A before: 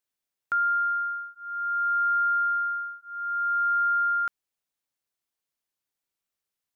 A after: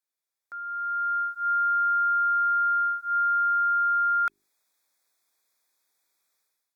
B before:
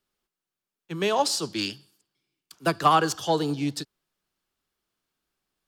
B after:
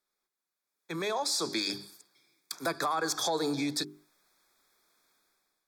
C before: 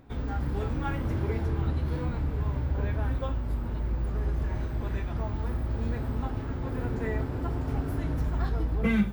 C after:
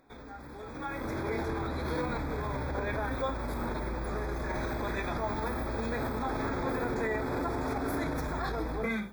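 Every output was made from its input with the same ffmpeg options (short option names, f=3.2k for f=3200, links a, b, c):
-af "asuperstop=centerf=2900:order=20:qfactor=4.1,equalizer=f=87:w=0.6:g=-7,bandreject=f=50:t=h:w=6,bandreject=f=100:t=h:w=6,bandreject=f=150:t=h:w=6,bandreject=f=200:t=h:w=6,bandreject=f=250:t=h:w=6,bandreject=f=300:t=h:w=6,bandreject=f=350:t=h:w=6,bandreject=f=400:t=h:w=6,acompressor=threshold=-34dB:ratio=16,alimiter=level_in=9dB:limit=-24dB:level=0:latency=1:release=21,volume=-9dB,dynaudnorm=f=640:g=3:m=15.5dB,lowshelf=f=210:g=-10.5,volume=-2.5dB" -ar 48000 -c:a libopus -b:a 256k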